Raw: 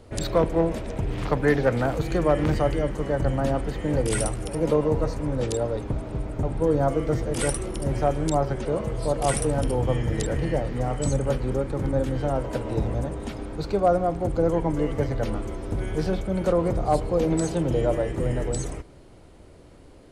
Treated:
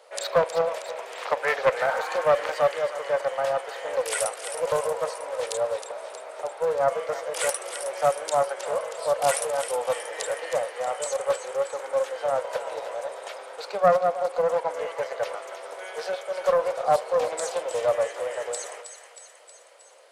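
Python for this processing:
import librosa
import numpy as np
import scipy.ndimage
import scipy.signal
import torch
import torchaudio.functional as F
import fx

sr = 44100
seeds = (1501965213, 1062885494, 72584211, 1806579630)

p1 = scipy.signal.sosfilt(scipy.signal.ellip(4, 1.0, 60, 520.0, 'highpass', fs=sr, output='sos'), x)
p2 = fx.spec_repair(p1, sr, seeds[0], start_s=1.9, length_s=0.3, low_hz=720.0, high_hz=2300.0, source='both')
p3 = p2 + fx.echo_thinned(p2, sr, ms=316, feedback_pct=64, hz=1200.0, wet_db=-8.5, dry=0)
p4 = fx.doppler_dist(p3, sr, depth_ms=0.21)
y = p4 * librosa.db_to_amplitude(3.0)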